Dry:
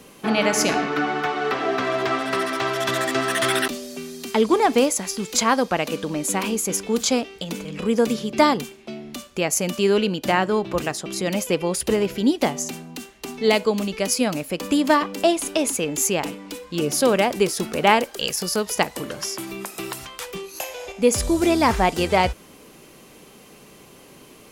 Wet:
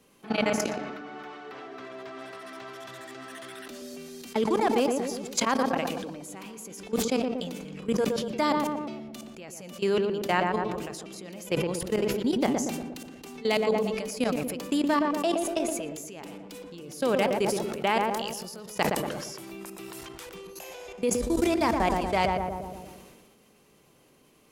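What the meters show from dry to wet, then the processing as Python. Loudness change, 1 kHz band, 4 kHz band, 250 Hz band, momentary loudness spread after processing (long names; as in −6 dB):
−6.0 dB, −6.5 dB, −9.5 dB, −6.0 dB, 17 LU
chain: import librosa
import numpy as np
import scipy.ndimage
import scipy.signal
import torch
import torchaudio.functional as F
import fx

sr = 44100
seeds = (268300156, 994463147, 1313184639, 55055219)

p1 = fx.level_steps(x, sr, step_db=19)
p2 = p1 + fx.echo_filtered(p1, sr, ms=118, feedback_pct=59, hz=1200.0, wet_db=-5.5, dry=0)
p3 = fx.sustainer(p2, sr, db_per_s=33.0)
y = F.gain(torch.from_numpy(p3), -5.0).numpy()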